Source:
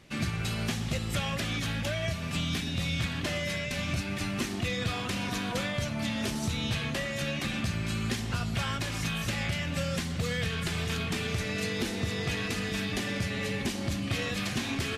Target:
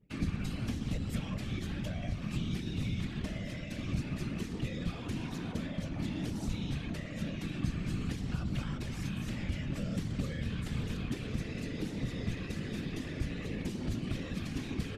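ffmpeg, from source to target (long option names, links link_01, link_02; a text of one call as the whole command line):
ffmpeg -i in.wav -filter_complex "[0:a]acrossover=split=320[link_01][link_02];[link_02]acompressor=threshold=-45dB:ratio=4[link_03];[link_01][link_03]amix=inputs=2:normalize=0,anlmdn=0.00631,afftfilt=real='hypot(re,im)*cos(2*PI*random(0))':imag='hypot(re,im)*sin(2*PI*random(1))':win_size=512:overlap=0.75,volume=4dB" out.wav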